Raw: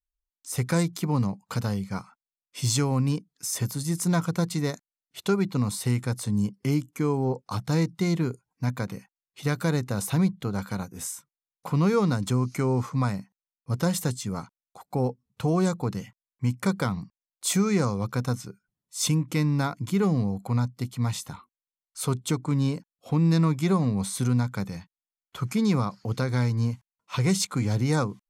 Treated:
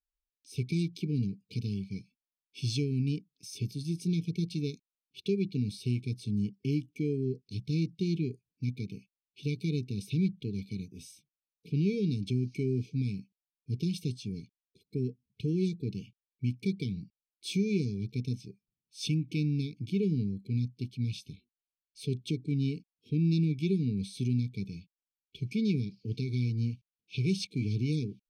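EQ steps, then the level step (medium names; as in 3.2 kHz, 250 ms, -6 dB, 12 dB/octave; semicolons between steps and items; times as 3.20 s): Savitzky-Golay filter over 15 samples; brick-wall FIR band-stop 460–2200 Hz; dynamic bell 1.5 kHz, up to +4 dB, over -49 dBFS, Q 1.2; -5.5 dB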